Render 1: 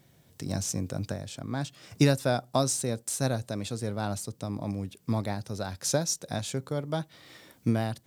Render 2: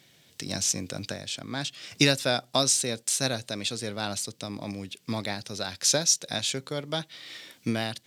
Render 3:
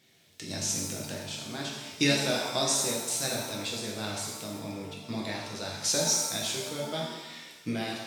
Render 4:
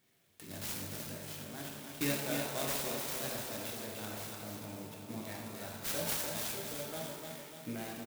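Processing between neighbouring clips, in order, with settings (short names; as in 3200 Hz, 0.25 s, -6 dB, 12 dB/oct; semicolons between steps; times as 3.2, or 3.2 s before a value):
weighting filter D
shimmer reverb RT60 1.1 s, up +7 st, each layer -8 dB, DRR -3 dB; gain -7.5 dB
feedback echo 0.297 s, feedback 54%, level -5.5 dB; clock jitter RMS 0.058 ms; gain -9 dB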